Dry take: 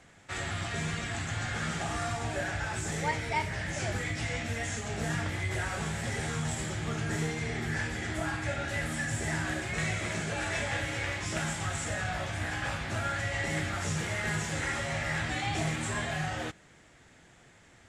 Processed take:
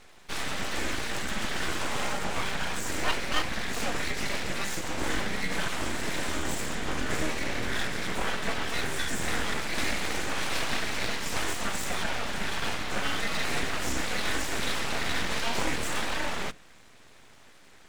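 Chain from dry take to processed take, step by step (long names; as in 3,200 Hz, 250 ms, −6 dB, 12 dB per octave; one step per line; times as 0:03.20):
high-shelf EQ 11,000 Hz −9.5 dB
mains-hum notches 50/100/150 Hz
full-wave rectification
level +6 dB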